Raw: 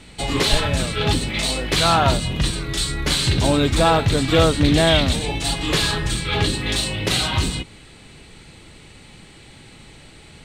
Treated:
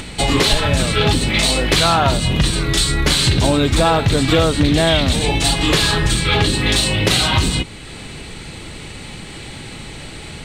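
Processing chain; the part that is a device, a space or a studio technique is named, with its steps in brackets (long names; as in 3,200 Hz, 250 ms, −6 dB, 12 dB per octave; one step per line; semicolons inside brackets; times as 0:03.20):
upward and downward compression (upward compression, threshold −35 dBFS; downward compressor 4 to 1, threshold −21 dBFS, peak gain reduction 9.5 dB)
level +9 dB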